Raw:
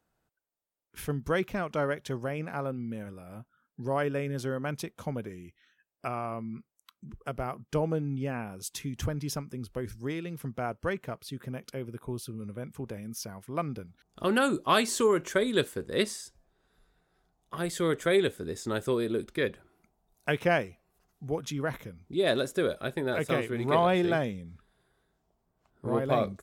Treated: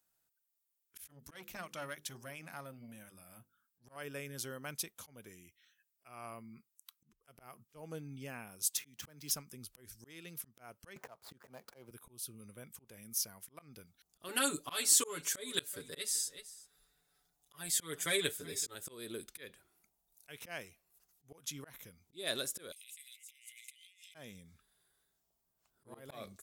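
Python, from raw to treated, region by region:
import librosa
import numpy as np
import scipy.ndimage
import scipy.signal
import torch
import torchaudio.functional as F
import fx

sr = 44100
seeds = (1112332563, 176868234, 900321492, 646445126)

y = fx.chain(x, sr, fx.peak_eq(hz=450.0, db=-11.0, octaves=0.25),
    fx.hum_notches(base_hz=50, count=10),
    fx.transformer_sat(knee_hz=640.0), at=(1.04, 3.96))
y = fx.chain(y, sr, fx.median_filter(points=5),
    fx.highpass(hz=140.0, slope=12),
    fx.band_squash(depth_pct=40), at=(8.77, 9.31))
y = fx.chain(y, sr, fx.median_filter(points=15),
    fx.peak_eq(hz=800.0, db=14.0, octaves=1.5),
    fx.band_squash(depth_pct=70), at=(10.96, 11.91))
y = fx.chain(y, sr, fx.comb(ms=6.9, depth=0.94),
    fx.echo_single(ms=378, db=-20.0), at=(14.28, 18.75))
y = fx.chain(y, sr, fx.cheby_ripple_highpass(hz=2000.0, ripple_db=9),
    fx.over_compress(threshold_db=-58.0, ratio=-1.0), at=(22.72, 24.15))
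y = fx.auto_swell(y, sr, attack_ms=229.0)
y = F.preemphasis(torch.from_numpy(y), 0.9).numpy()
y = y * librosa.db_to_amplitude(5.0)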